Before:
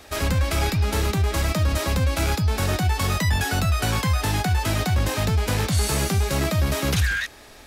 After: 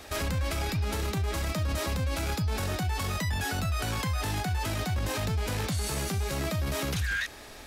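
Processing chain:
brickwall limiter −22.5 dBFS, peak gain reduction 10.5 dB

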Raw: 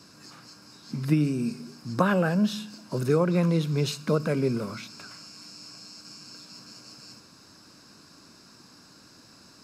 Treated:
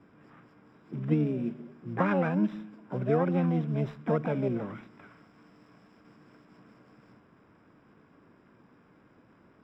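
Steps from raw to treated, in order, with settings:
running median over 15 samples
pitch-shifted copies added +7 semitones −7 dB
Savitzky-Golay smoothing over 25 samples
level −4 dB

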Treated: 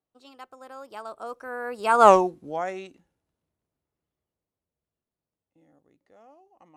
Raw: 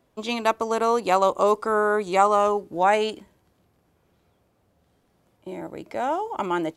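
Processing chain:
source passing by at 0:02.08, 47 m/s, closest 2.6 metres
level +8 dB

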